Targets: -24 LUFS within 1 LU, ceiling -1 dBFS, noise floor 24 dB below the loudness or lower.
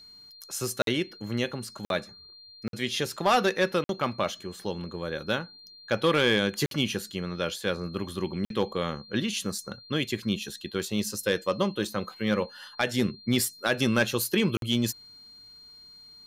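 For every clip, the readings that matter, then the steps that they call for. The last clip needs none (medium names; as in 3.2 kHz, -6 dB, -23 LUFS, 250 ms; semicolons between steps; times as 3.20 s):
dropouts 7; longest dropout 52 ms; steady tone 4.2 kHz; tone level -48 dBFS; loudness -28.5 LUFS; peak level -14.5 dBFS; loudness target -24.0 LUFS
-> interpolate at 0.82/1.85/2.68/3.84/6.66/8.45/14.57 s, 52 ms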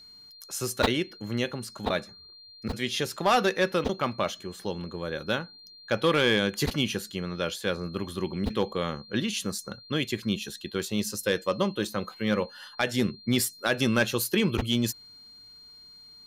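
dropouts 0; steady tone 4.2 kHz; tone level -48 dBFS
-> band-stop 4.2 kHz, Q 30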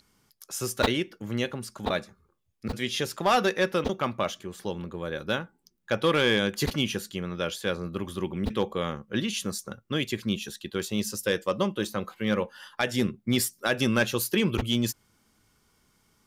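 steady tone not found; loudness -28.5 LUFS; peak level -7.5 dBFS; loudness target -24.0 LUFS
-> trim +4.5 dB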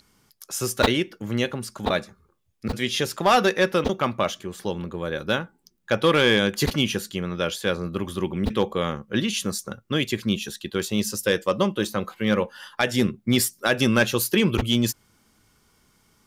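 loudness -24.0 LUFS; peak level -3.0 dBFS; noise floor -65 dBFS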